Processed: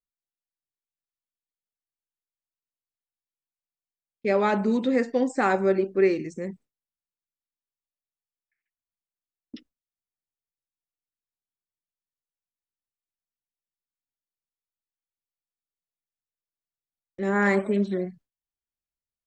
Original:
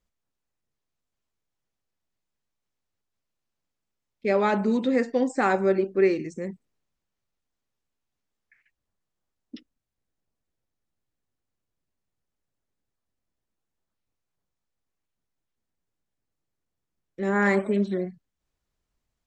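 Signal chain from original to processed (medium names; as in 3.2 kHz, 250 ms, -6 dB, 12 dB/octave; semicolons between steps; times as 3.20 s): gate with hold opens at -41 dBFS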